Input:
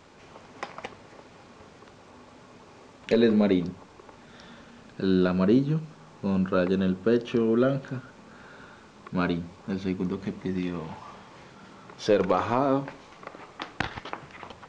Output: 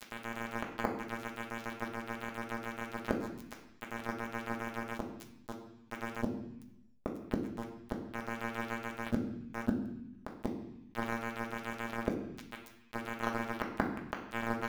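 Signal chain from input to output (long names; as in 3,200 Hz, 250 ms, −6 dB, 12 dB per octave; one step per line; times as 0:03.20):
variable-slope delta modulation 64 kbit/s
Butterworth low-pass 1,400 Hz
in parallel at −3 dB: floating-point word with a short mantissa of 2 bits
on the sum: multi-voice chorus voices 2, 1 Hz, delay 11 ms, depth 3 ms
phases set to zero 115 Hz
gate with flip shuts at −23 dBFS, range −31 dB
amplitude tremolo 7.1 Hz, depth 72%
dead-zone distortion −45 dBFS
on a send at −2.5 dB: convolution reverb RT60 0.50 s, pre-delay 3 ms
on the sum: envelope flattener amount 50%
level +9.5 dB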